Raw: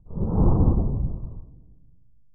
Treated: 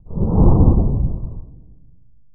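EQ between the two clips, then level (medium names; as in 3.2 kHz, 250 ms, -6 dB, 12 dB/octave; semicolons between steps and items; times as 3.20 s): low-pass 1.2 kHz 24 dB/octave; +7.0 dB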